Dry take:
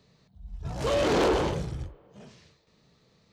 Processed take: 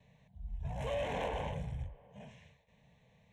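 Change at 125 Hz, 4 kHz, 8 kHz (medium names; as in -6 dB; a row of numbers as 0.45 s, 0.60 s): -7.0 dB, -14.0 dB, -18.0 dB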